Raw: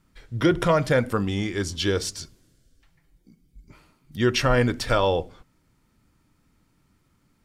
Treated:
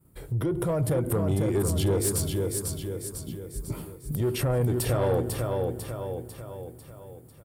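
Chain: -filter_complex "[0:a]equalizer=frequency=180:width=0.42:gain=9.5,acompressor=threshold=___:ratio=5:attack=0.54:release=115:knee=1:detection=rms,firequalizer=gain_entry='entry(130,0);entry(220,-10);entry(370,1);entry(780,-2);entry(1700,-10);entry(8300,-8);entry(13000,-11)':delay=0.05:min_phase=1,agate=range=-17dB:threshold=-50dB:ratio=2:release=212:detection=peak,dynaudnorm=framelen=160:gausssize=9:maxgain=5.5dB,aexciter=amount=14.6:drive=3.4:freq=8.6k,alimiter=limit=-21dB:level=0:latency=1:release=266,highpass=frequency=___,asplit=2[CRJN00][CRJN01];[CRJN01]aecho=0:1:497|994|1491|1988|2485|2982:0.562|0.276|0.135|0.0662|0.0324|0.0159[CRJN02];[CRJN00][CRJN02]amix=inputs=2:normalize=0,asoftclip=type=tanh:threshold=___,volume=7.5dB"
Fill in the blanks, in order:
-31dB, 45, -25.5dB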